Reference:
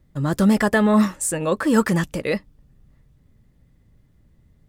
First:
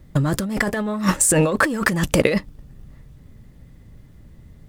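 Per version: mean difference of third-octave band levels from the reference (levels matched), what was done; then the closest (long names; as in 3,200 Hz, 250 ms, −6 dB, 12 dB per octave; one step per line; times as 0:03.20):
7.5 dB: leveller curve on the samples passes 1
compressor whose output falls as the input rises −25 dBFS, ratio −1
level +5 dB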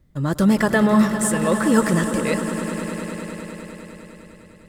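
5.5 dB: notch filter 800 Hz, Q 22
echo that builds up and dies away 101 ms, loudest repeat 5, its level −13.5 dB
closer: second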